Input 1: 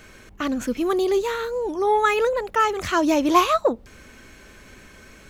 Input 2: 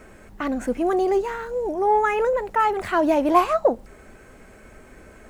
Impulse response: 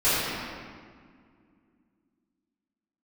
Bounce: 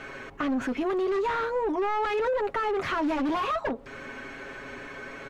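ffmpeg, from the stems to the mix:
-filter_complex "[0:a]aecho=1:1:7.3:0.69,aeval=exprs='0.188*(abs(mod(val(0)/0.188+3,4)-2)-1)':c=same,asplit=2[s0][s1];[s1]highpass=f=720:p=1,volume=8.91,asoftclip=type=tanh:threshold=0.188[s2];[s0][s2]amix=inputs=2:normalize=0,lowpass=f=1100:p=1,volume=0.501,volume=0.944[s3];[1:a]highpass=920,volume=0.562[s4];[s3][s4]amix=inputs=2:normalize=0,highshelf=f=6200:g=-11,alimiter=limit=0.0841:level=0:latency=1:release=217"

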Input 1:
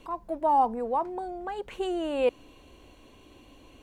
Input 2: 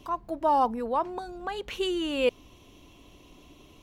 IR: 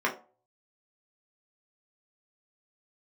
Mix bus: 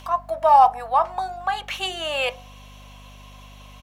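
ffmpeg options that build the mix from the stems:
-filter_complex "[0:a]volume=1.26,asplit=2[s0][s1];[s1]volume=0.168[s2];[1:a]acontrast=82,volume=-1,adelay=1.7,volume=1,asplit=2[s3][s4];[s4]volume=0.119[s5];[2:a]atrim=start_sample=2205[s6];[s2][s5]amix=inputs=2:normalize=0[s7];[s7][s6]afir=irnorm=-1:irlink=0[s8];[s0][s3][s8]amix=inputs=3:normalize=0,highpass=f=640:w=0.5412,highpass=f=640:w=1.3066,acompressor=mode=upward:threshold=0.00355:ratio=2.5,aeval=exprs='val(0)+0.00631*(sin(2*PI*50*n/s)+sin(2*PI*2*50*n/s)/2+sin(2*PI*3*50*n/s)/3+sin(2*PI*4*50*n/s)/4+sin(2*PI*5*50*n/s)/5)':c=same"

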